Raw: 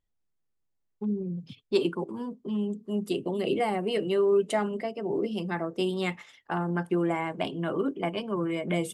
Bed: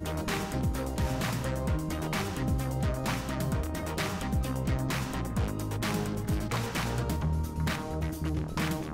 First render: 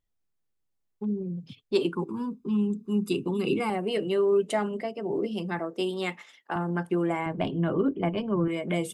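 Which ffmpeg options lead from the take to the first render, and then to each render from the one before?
-filter_complex "[0:a]asettb=1/sr,asplit=3[a][b][c];[a]atrim=end=1.944[d];[b]atrim=start=1.94:end=3.7,asetpts=PTS-STARTPTS,afade=t=in:d=0.004:c=qsin,afade=t=out:st=1.756:d=0.004:c=qsin,aecho=1:1:0.8:0.88,atrim=end_sample=77616[e];[c]atrim=start=3.696[f];[d][e]acrossfade=d=0.004:c1=hsin:c2=qsin[g];[g][f]acrossfade=d=0.004:c1=qsin:c2=hsin,asettb=1/sr,asplit=3[h][i][j];[h]atrim=end=5.594[k];[i]atrim=start=5.59:end=6.56,asetpts=PTS-STARTPTS,afade=t=in:d=0.004:c=qsin,afade=t=out:st=0.966:d=0.004:c=qsin,highpass=220[l];[j]atrim=start=6.556[m];[k][l]acrossfade=d=0.004:c1=hsin:c2=qsin[n];[n][m]acrossfade=d=0.004:c1=qsin:c2=hsin,asettb=1/sr,asplit=3[o][p][q];[o]atrim=end=7.264[r];[p]atrim=start=7.26:end=8.48,asetpts=PTS-STARTPTS,afade=t=in:d=0.004:c=qsin,afade=t=out:st=1.216:d=0.004:c=qsin,aemphasis=mode=reproduction:type=bsi[s];[q]atrim=start=8.476[t];[r][s]acrossfade=d=0.004:c1=hsin:c2=qsin[u];[u][t]acrossfade=d=0.004:c1=qsin:c2=hsin"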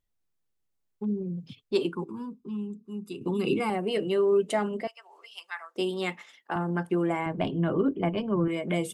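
-filter_complex "[0:a]asettb=1/sr,asplit=3[a][b][c];[a]atrim=end=4.874[d];[b]atrim=start=4.87:end=5.76,asetpts=PTS-STARTPTS,afade=t=in:d=0.004:c=qsin,afade=t=out:st=0.886:d=0.004:c=qsin,highpass=f=1.1k:w=0.5412,highpass=f=1.1k:w=1.3066[e];[c]atrim=start=5.756[f];[d][e]acrossfade=d=0.004:c1=hsin:c2=qsin[g];[g][f]acrossfade=d=0.004:c1=qsin:c2=hsin,asplit=2[h][i];[h]atrim=end=3.21,asetpts=PTS-STARTPTS,afade=t=out:st=1.61:d=1.6:c=qua:silence=0.281838[j];[i]atrim=start=3.21,asetpts=PTS-STARTPTS,afade=t=in:d=0.004:c=hsin:silence=0.281838[k];[j][k]concat=n=2:v=0:a=1"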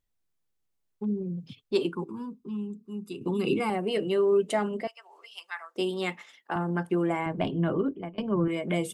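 -filter_complex "[0:a]asplit=2[a][b];[a]atrim=end=8.18,asetpts=PTS-STARTPTS,afade=t=out:st=7.7:d=0.48:silence=0.0630957[c];[b]atrim=start=8.18,asetpts=PTS-STARTPTS,afade=t=in:d=0.004:c=hsin:silence=0.0630957[d];[c][d]concat=n=2:v=0:a=1"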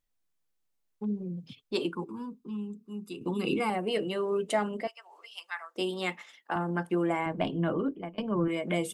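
-af "equalizer=f=84:t=o:w=2.2:g=-6,bandreject=f=390:w=12"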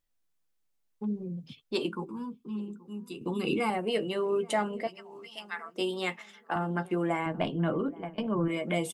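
-filter_complex "[0:a]asplit=2[a][b];[b]adelay=13,volume=-11dB[c];[a][c]amix=inputs=2:normalize=0,asplit=2[d][e];[e]adelay=828,lowpass=f=870:p=1,volume=-19.5dB,asplit=2[f][g];[g]adelay=828,lowpass=f=870:p=1,volume=0.37,asplit=2[h][i];[i]adelay=828,lowpass=f=870:p=1,volume=0.37[j];[d][f][h][j]amix=inputs=4:normalize=0"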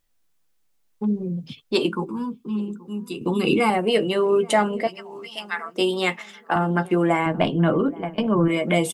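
-af "volume=9.5dB"

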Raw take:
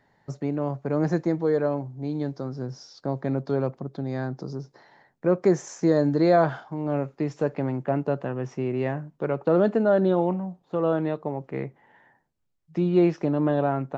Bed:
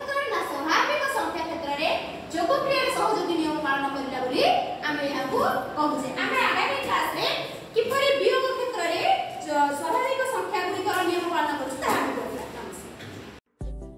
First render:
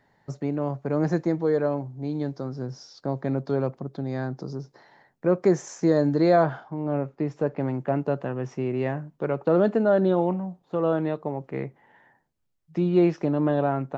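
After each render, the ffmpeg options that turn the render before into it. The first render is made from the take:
-filter_complex "[0:a]asettb=1/sr,asplit=3[a][b][c];[a]atrim=end=6.434[d];[b]atrim=start=6.43:end=7.6,asetpts=PTS-STARTPTS,afade=t=in:d=0.004:c=qsin,afade=t=out:st=1.166:d=0.004:c=qsin,highshelf=f=2.9k:g=-9.5[e];[c]atrim=start=7.596[f];[d][e]acrossfade=d=0.004:c1=hsin:c2=qsin[g];[g][f]acrossfade=d=0.004:c1=qsin:c2=hsin"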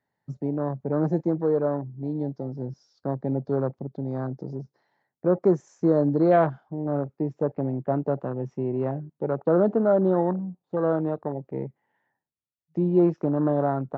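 -af "highpass=61,afwtdn=0.0282"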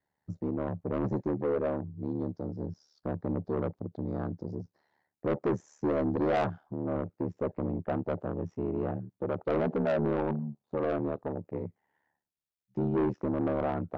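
-af "aeval=exprs='val(0)*sin(2*PI*37*n/s)':c=same,asoftclip=type=tanh:threshold=-22.5dB"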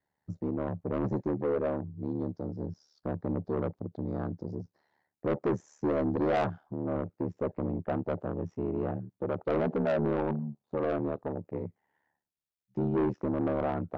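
-af anull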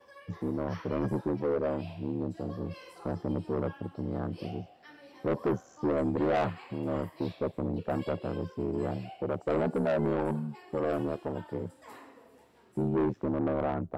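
-filter_complex "[1:a]volume=-25.5dB[a];[0:a][a]amix=inputs=2:normalize=0"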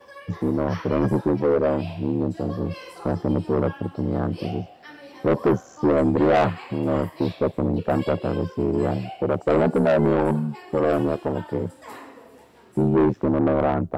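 -af "volume=9.5dB"

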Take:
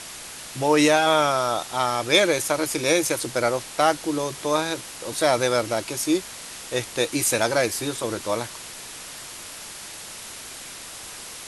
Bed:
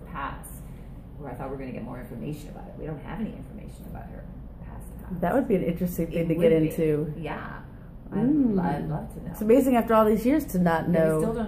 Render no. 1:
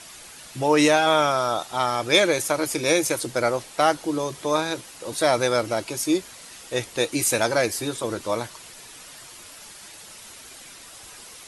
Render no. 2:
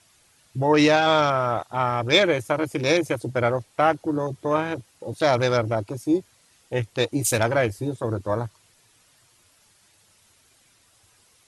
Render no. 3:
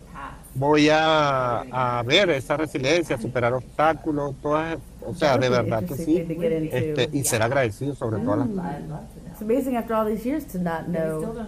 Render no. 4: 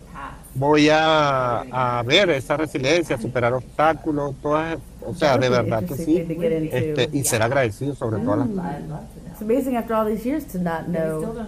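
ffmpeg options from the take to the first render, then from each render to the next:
-af "afftdn=nr=8:nf=-39"
-af "afwtdn=0.0282,equalizer=f=100:w=1.6:g=12.5"
-filter_complex "[1:a]volume=-3.5dB[a];[0:a][a]amix=inputs=2:normalize=0"
-af "volume=2dB"

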